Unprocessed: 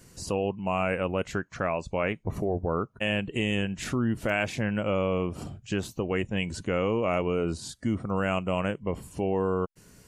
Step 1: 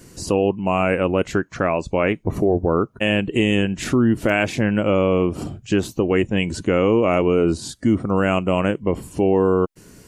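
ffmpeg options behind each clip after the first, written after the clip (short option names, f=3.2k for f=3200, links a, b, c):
-af "equalizer=f=320:t=o:w=0.87:g=6.5,volume=7dB"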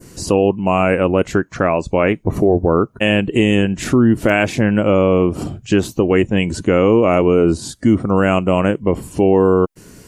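-af "adynamicequalizer=threshold=0.0126:dfrequency=3300:dqfactor=0.73:tfrequency=3300:tqfactor=0.73:attack=5:release=100:ratio=0.375:range=2:mode=cutabove:tftype=bell,volume=4.5dB"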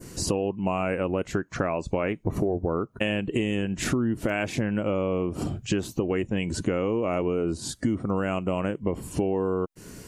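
-af "acompressor=threshold=-21dB:ratio=6,volume=-2dB"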